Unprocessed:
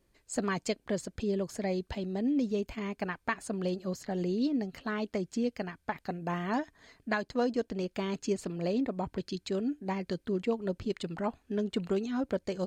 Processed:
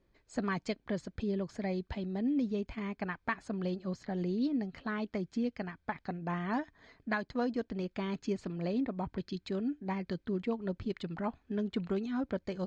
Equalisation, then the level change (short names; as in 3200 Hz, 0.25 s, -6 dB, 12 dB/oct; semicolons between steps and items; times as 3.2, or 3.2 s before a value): notch 2800 Hz, Q 14; dynamic EQ 490 Hz, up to -5 dB, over -45 dBFS, Q 1.1; air absorption 160 m; 0.0 dB